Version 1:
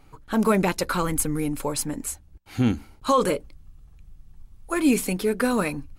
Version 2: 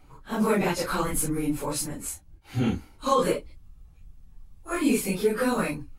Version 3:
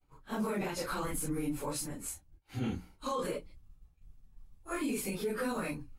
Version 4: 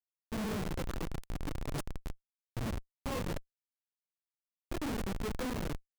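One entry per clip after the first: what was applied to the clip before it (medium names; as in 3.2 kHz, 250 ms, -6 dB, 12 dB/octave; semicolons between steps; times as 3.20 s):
phase randomisation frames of 100 ms; trim -2 dB
peak limiter -19.5 dBFS, peak gain reduction 8.5 dB; hum notches 60/120/180 Hz; expander -44 dBFS; trim -6.5 dB
bass shelf 83 Hz +11 dB; Schmitt trigger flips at -31 dBFS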